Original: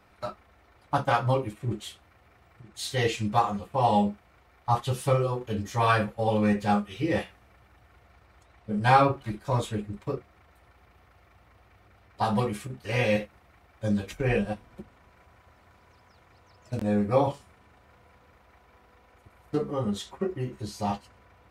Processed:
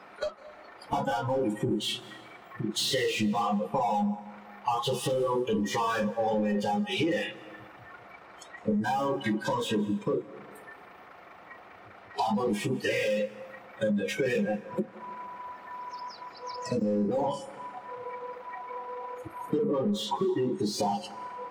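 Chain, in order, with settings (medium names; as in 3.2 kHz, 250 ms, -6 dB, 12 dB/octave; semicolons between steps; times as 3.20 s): overdrive pedal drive 40 dB, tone 1.3 kHz, clips at -6 dBFS; resonant low shelf 130 Hz -8 dB, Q 1.5; compression 12:1, threshold -25 dBFS, peak gain reduction 15 dB; spectral noise reduction 18 dB; on a send: reverberation RT60 1.6 s, pre-delay 148 ms, DRR 17.5 dB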